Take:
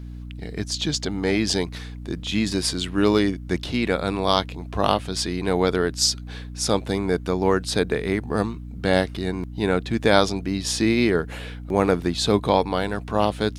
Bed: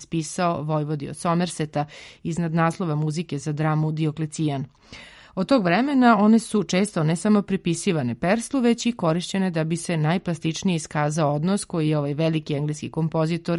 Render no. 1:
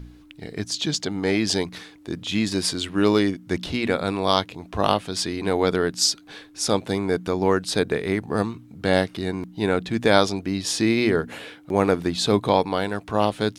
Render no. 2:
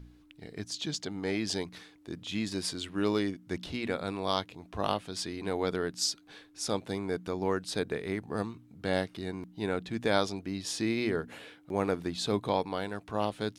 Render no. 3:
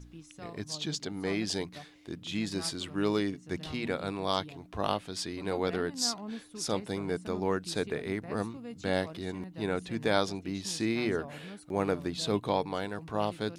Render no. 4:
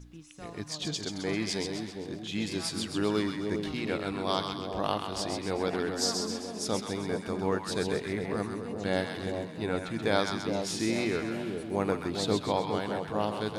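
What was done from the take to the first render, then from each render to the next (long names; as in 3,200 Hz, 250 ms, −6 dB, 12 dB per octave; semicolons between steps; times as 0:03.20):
hum removal 60 Hz, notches 4
level −10 dB
mix in bed −24 dB
echo with a time of its own for lows and highs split 850 Hz, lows 410 ms, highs 131 ms, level −5 dB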